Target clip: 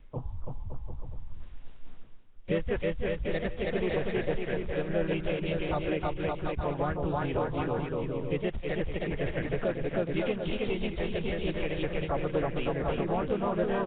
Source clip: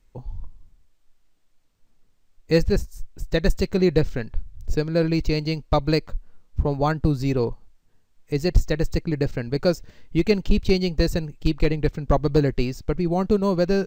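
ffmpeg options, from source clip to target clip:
-filter_complex "[0:a]aecho=1:1:320|560|740|875|976.2:0.631|0.398|0.251|0.158|0.1,areverse,acompressor=mode=upward:threshold=-27dB:ratio=2.5,areverse,asoftclip=type=tanh:threshold=-9dB,acrossover=split=560[a][b];[a]acompressor=threshold=-31dB:ratio=12[c];[b]alimiter=level_in=0.5dB:limit=-24dB:level=0:latency=1:release=195,volume=-0.5dB[d];[c][d]amix=inputs=2:normalize=0,asplit=3[e][f][g];[f]asetrate=29433,aresample=44100,atempo=1.49831,volume=-17dB[h];[g]asetrate=52444,aresample=44100,atempo=0.840896,volume=-4dB[i];[e][h][i]amix=inputs=3:normalize=0" -ar 8000 -c:a nellymoser

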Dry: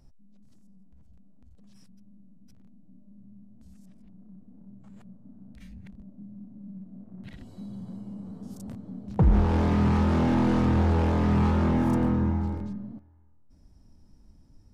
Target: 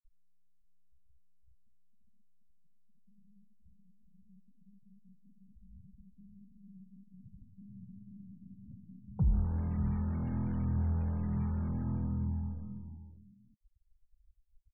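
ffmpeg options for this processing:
-filter_complex "[0:a]afftfilt=real='re*gte(hypot(re,im),0.0251)':imag='im*gte(hypot(re,im),0.0251)':win_size=1024:overlap=0.75,firequalizer=gain_entry='entry(150,0);entry(300,-14);entry(1900,-9);entry(5900,-4)':delay=0.05:min_phase=1,asplit=2[a][b];[b]aecho=0:1:563:0.251[c];[a][c]amix=inputs=2:normalize=0,volume=-8dB"

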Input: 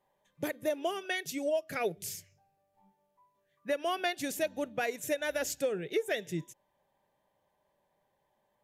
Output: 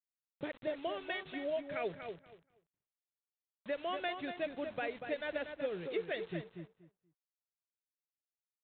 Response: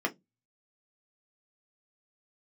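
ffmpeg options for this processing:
-filter_complex "[0:a]aresample=8000,acrusher=bits=7:mix=0:aa=0.000001,aresample=44100,asplit=2[a][b];[b]adelay=239,lowpass=f=2.2k:p=1,volume=-6.5dB,asplit=2[c][d];[d]adelay=239,lowpass=f=2.2k:p=1,volume=0.19,asplit=2[e][f];[f]adelay=239,lowpass=f=2.2k:p=1,volume=0.19[g];[a][c][e][g]amix=inputs=4:normalize=0,volume=-6dB"

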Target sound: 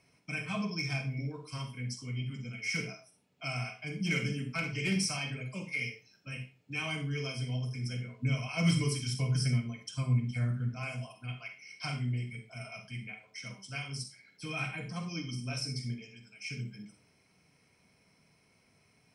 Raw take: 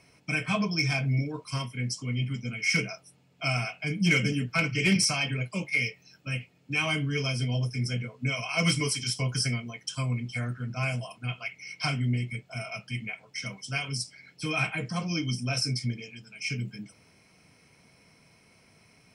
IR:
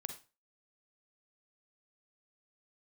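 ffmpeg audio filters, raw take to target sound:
-filter_complex "[0:a]asettb=1/sr,asplit=3[a][b][c];[a]atrim=end=8.134[d];[b]atrim=start=8.13:end=10.69,asetpts=PTS-STARTPTS,afade=t=in:d=0.004:c=qsin,afade=t=out:st=2.556:d=0.004:c=qsin,lowshelf=f=270:g=10[e];[c]atrim=start=10.686[f];[d][e]acrossfade=d=0.004:c1=hsin:c2=qsin[g];[g][f]acrossfade=d=0.004:c1=qsin:c2=hsin[h];[1:a]atrim=start_sample=2205[i];[h][i]afir=irnorm=-1:irlink=0,volume=-5.5dB"

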